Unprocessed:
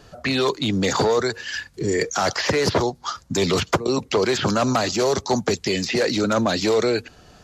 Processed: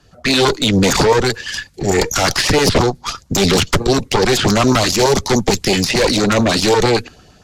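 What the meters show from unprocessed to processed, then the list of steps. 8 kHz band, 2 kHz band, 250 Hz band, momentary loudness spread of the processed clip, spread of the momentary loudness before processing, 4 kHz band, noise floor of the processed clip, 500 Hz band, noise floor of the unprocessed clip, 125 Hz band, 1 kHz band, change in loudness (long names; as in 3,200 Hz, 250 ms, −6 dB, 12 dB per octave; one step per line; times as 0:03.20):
+9.5 dB, +7.0 dB, +7.0 dB, 6 LU, 6 LU, +9.0 dB, −48 dBFS, +5.5 dB, −51 dBFS, +9.0 dB, +6.5 dB, +7.0 dB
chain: harmonic generator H 4 −8 dB, 5 −13 dB, 8 −20 dB, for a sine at −6.5 dBFS
auto-filter notch saw up 8.9 Hz 410–2,000 Hz
multiband upward and downward expander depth 40%
level +2.5 dB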